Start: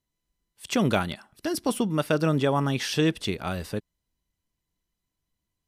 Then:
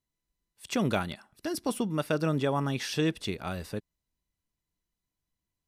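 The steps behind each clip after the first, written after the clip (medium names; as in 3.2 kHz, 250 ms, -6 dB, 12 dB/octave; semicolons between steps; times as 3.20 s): band-stop 3.1 kHz, Q 18; trim -4.5 dB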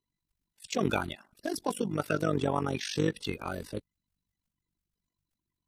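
coarse spectral quantiser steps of 30 dB; AM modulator 48 Hz, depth 70%; trim +3 dB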